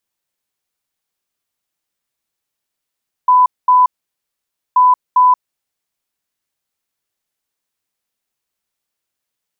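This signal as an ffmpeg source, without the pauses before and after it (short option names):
-f lavfi -i "aevalsrc='0.501*sin(2*PI*1000*t)*clip(min(mod(mod(t,1.48),0.4),0.18-mod(mod(t,1.48),0.4))/0.005,0,1)*lt(mod(t,1.48),0.8)':d=2.96:s=44100"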